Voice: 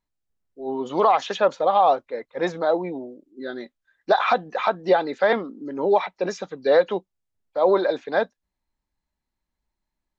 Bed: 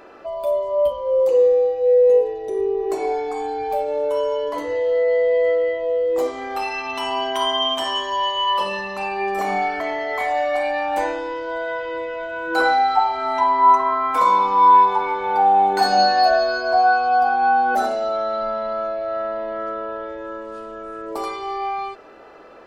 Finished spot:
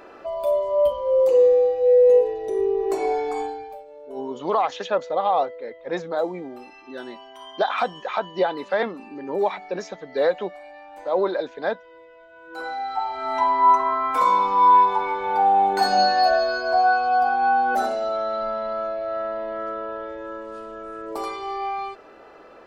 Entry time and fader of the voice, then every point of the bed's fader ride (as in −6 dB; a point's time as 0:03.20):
3.50 s, −3.5 dB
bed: 0:03.41 −0.5 dB
0:03.84 −20.5 dB
0:12.29 −20.5 dB
0:13.37 −2.5 dB